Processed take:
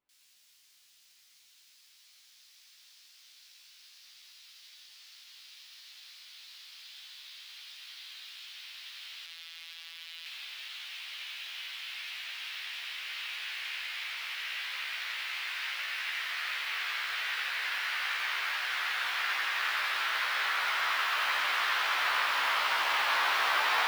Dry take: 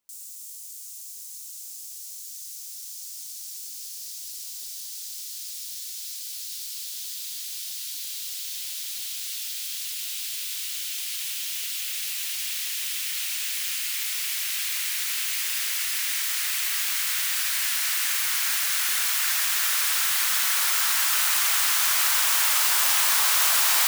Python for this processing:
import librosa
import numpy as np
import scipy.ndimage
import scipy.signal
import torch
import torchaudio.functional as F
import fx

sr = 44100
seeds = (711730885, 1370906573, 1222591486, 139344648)

y = fx.air_absorb(x, sr, metres=370.0)
y = fx.doubler(y, sr, ms=15.0, db=-3.0)
y = y + 10.0 ** (-4.5 / 20.0) * np.pad(y, (int(87 * sr / 1000.0), 0))[:len(y)]
y = fx.robotise(y, sr, hz=165.0, at=(9.26, 10.26))